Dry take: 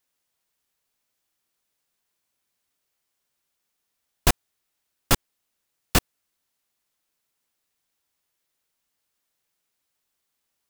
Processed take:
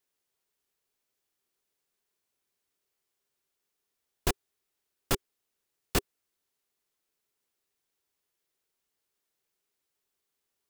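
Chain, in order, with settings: peaking EQ 400 Hz +9 dB 0.39 oct; peak limiter -9.5 dBFS, peak gain reduction 5.5 dB; trim -5 dB

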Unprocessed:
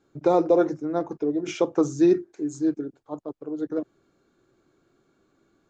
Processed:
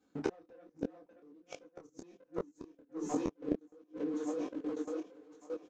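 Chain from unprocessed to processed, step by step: high-pass 53 Hz 24 dB/octave; treble shelf 6.1 kHz +10 dB; comb 4 ms, depth 88%; de-hum 187.3 Hz, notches 36; waveshaping leveller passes 2; two-band feedback delay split 340 Hz, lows 309 ms, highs 581 ms, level -9 dB; level held to a coarse grid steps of 19 dB; inverted gate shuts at -20 dBFS, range -39 dB; distance through air 53 m; detune thickener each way 45 cents; trim +6 dB

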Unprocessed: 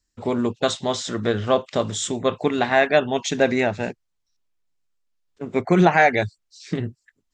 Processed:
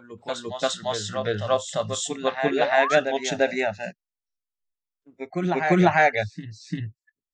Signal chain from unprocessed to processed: spectral noise reduction 19 dB; reverse echo 346 ms -7 dB; painted sound rise, 2.51–3.00 s, 340–1700 Hz -24 dBFS; trim -2.5 dB

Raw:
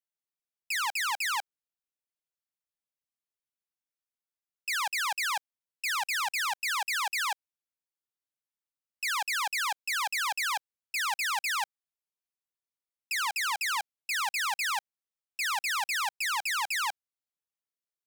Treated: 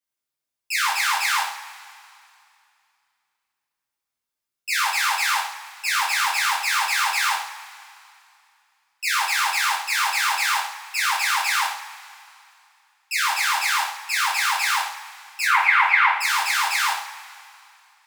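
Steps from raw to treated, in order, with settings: 15.45–16.11 s: cabinet simulation 400–3000 Hz, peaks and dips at 520 Hz +4 dB, 990 Hz +6 dB, 1.4 kHz +5 dB, 2.1 kHz +10 dB; two-slope reverb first 0.51 s, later 2.6 s, from -18 dB, DRR -8 dB

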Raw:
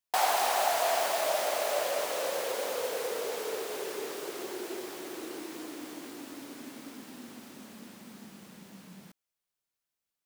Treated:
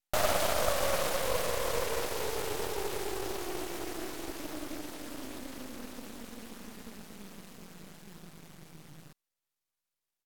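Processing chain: half-wave rectifier; pitch shift -3.5 st; trim +2.5 dB

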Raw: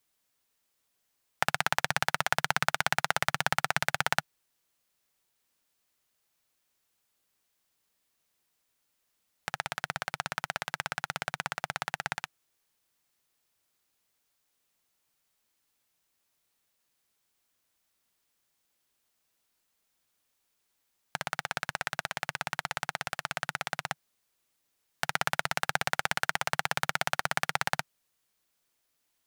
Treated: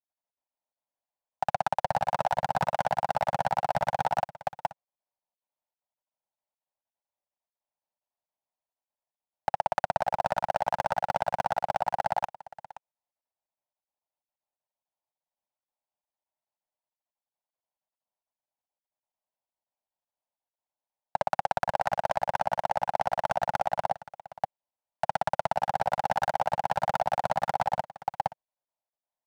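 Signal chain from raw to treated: low-pass 1.7 kHz 6 dB/octave; waveshaping leveller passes 5; high-order bell 740 Hz +14 dB 1.1 oct; on a send: delay 525 ms -8.5 dB; on the sum: level held to a coarse grid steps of 18 dB; trim -8 dB

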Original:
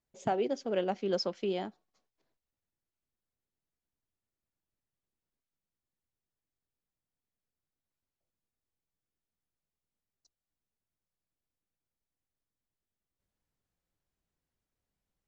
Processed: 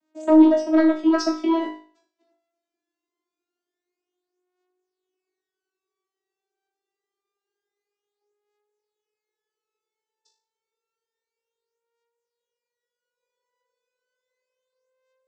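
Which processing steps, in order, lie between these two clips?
vocoder on a note that slides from D#4, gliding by +9 st; sine folder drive 5 dB, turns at -20 dBFS; flutter echo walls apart 3.3 m, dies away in 0.42 s; trim +6.5 dB

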